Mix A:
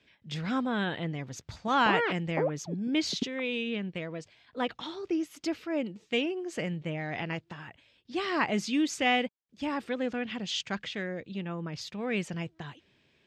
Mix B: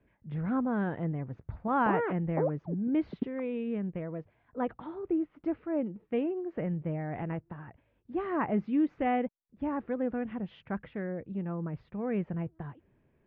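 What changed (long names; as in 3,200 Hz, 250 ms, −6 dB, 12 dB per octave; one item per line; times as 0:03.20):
speech: remove high-pass filter 130 Hz 6 dB per octave
master: add Bessel low-pass filter 1,100 Hz, order 4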